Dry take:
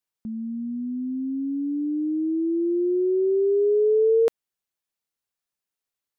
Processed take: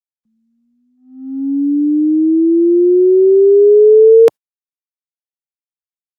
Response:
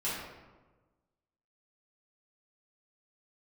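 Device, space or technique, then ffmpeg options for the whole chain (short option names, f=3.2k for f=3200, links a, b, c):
video call: -af "highpass=f=110:w=0.5412,highpass=f=110:w=1.3066,dynaudnorm=f=250:g=9:m=8dB,agate=range=-37dB:threshold=-21dB:ratio=16:detection=peak,volume=5dB" -ar 48000 -c:a libopus -b:a 24k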